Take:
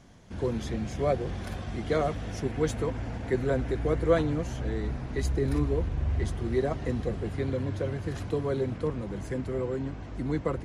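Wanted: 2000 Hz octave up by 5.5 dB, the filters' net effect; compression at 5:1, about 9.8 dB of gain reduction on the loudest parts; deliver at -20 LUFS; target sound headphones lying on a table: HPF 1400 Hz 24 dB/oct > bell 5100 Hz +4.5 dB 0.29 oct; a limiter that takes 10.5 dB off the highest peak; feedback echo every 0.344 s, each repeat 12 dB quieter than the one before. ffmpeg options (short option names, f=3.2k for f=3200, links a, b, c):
-af "equalizer=f=2k:t=o:g=7.5,acompressor=threshold=-28dB:ratio=5,alimiter=level_in=4.5dB:limit=-24dB:level=0:latency=1,volume=-4.5dB,highpass=f=1.4k:w=0.5412,highpass=f=1.4k:w=1.3066,equalizer=f=5.1k:t=o:w=0.29:g=4.5,aecho=1:1:344|688|1032:0.251|0.0628|0.0157,volume=27dB"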